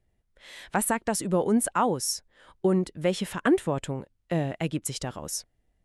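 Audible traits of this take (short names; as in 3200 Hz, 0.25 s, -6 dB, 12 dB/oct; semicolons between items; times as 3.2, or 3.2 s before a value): noise floor -73 dBFS; spectral tilt -4.5 dB/oct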